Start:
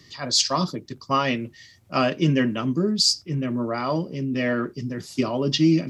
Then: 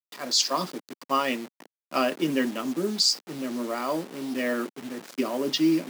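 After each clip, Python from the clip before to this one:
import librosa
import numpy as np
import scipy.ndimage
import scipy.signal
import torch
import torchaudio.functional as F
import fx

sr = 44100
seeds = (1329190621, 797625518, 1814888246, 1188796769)

y = fx.delta_hold(x, sr, step_db=-32.5)
y = scipy.signal.sosfilt(scipy.signal.butter(4, 230.0, 'highpass', fs=sr, output='sos'), y)
y = y * 10.0 ** (-2.5 / 20.0)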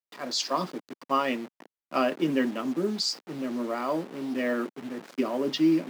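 y = fx.high_shelf(x, sr, hz=4100.0, db=-11.5)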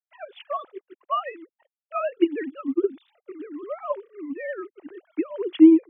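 y = fx.sine_speech(x, sr)
y = fx.transient(y, sr, attack_db=4, sustain_db=-6)
y = y * 10.0 ** (2.5 / 20.0)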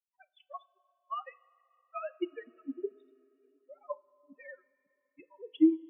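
y = fx.bin_expand(x, sr, power=3.0)
y = fx.rev_double_slope(y, sr, seeds[0], early_s=0.25, late_s=3.0, knee_db=-18, drr_db=14.0)
y = y * 10.0 ** (-8.5 / 20.0)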